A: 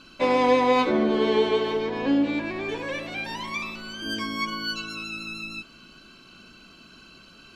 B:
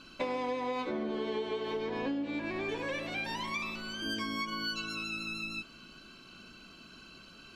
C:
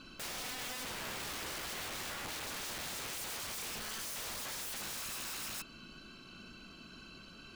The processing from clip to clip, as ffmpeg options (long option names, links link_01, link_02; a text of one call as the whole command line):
ffmpeg -i in.wav -af "acompressor=threshold=-28dB:ratio=12,volume=-3dB" out.wav
ffmpeg -i in.wav -af "lowshelf=frequency=220:gain=4.5,aeval=exprs='(mod(63.1*val(0)+1,2)-1)/63.1':channel_layout=same,volume=-1dB" out.wav